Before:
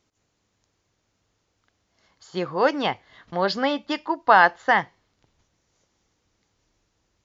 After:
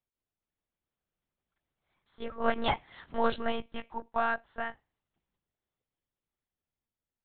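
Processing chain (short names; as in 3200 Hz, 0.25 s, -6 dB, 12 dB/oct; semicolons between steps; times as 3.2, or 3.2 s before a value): Doppler pass-by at 2.96, 22 m/s, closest 5.2 m; monotone LPC vocoder at 8 kHz 230 Hz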